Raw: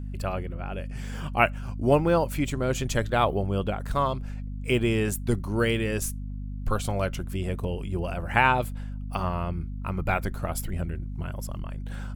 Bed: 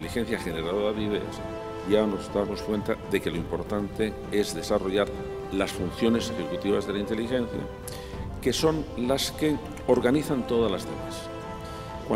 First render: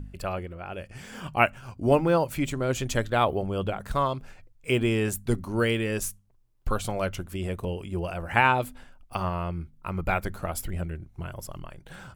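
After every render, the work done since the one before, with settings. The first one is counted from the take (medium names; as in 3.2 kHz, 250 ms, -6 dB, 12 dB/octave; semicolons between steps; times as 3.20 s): de-hum 50 Hz, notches 5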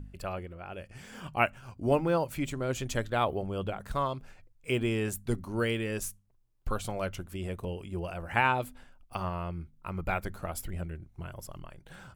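trim -5 dB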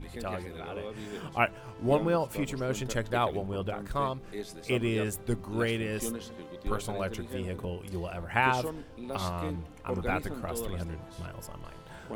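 add bed -13.5 dB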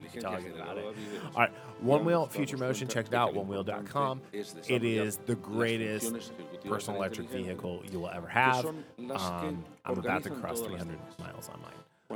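gate with hold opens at -35 dBFS; high-pass 120 Hz 24 dB/octave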